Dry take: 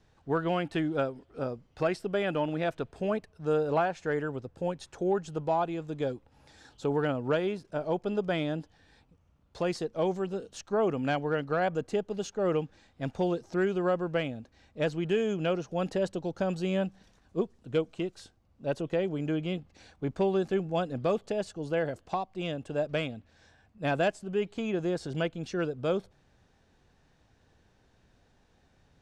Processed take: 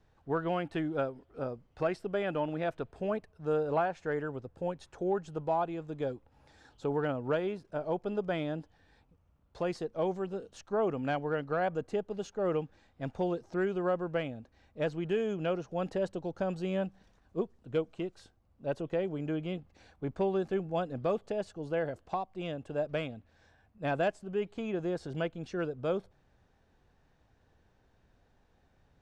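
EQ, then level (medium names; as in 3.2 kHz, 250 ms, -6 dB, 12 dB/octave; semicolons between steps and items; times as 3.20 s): peaking EQ 200 Hz -4 dB 2.8 oct; treble shelf 2.2 kHz -9.5 dB; 0.0 dB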